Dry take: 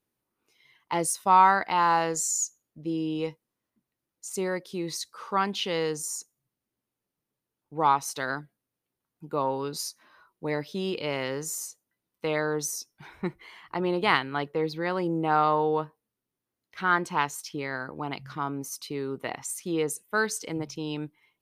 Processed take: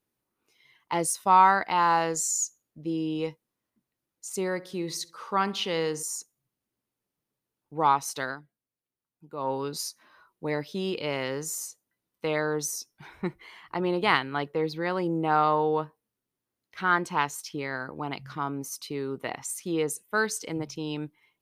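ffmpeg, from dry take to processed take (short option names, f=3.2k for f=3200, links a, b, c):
-filter_complex "[0:a]asettb=1/sr,asplit=3[a][b][c];[a]atrim=end=4.494[d];[b]atrim=start=4.49:end=6.03,asetpts=PTS-STARTPTS,afade=t=in:d=0.004:c=qsin,afade=t=out:st=1.536:d=0.004:c=qsin,asplit=2[e][f];[f]adelay=67,lowpass=f=3.3k:p=1,volume=-19dB,asplit=2[g][h];[h]adelay=67,lowpass=f=3.3k:p=1,volume=0.53,asplit=2[i][j];[j]adelay=67,lowpass=f=3.3k:p=1,volume=0.53,asplit=2[k][l];[l]adelay=67,lowpass=f=3.3k:p=1,volume=0.53[m];[e][g][i][k][m]amix=inputs=5:normalize=0,atrim=end_sample=67914[n];[c]atrim=start=6.026[o];[d][n]acrossfade=d=0.004:c1=hsin:c2=qsin[p];[p][o]acrossfade=d=0.004:c1=qsin:c2=hsin,asplit=3[q][r][s];[q]atrim=end=8.37,asetpts=PTS-STARTPTS,afade=t=out:st=8.23:d=0.14:silence=0.354813[t];[r]atrim=start=8.37:end=9.37,asetpts=PTS-STARTPTS,volume=-9dB[u];[s]atrim=start=9.37,asetpts=PTS-STARTPTS,afade=t=in:d=0.14:silence=0.354813[v];[t][u][v]concat=n=3:v=0:a=1"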